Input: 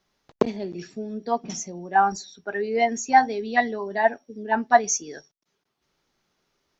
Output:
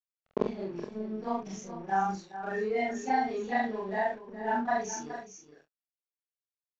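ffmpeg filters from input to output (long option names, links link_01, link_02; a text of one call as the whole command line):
ffmpeg -i in.wav -filter_complex "[0:a]afftfilt=real='re':imag='-im':win_size=4096:overlap=0.75,acrossover=split=250|3000[link_01][link_02][link_03];[link_02]acompressor=threshold=-26dB:ratio=6[link_04];[link_01][link_04][link_03]amix=inputs=3:normalize=0,aresample=16000,aeval=exprs='sgn(val(0))*max(abs(val(0))-0.00299,0)':channel_layout=same,aresample=44100,aemphasis=mode=reproduction:type=75fm,asplit=2[link_05][link_06];[link_06]adelay=26,volume=-10dB[link_07];[link_05][link_07]amix=inputs=2:normalize=0,aecho=1:1:421:0.251" out.wav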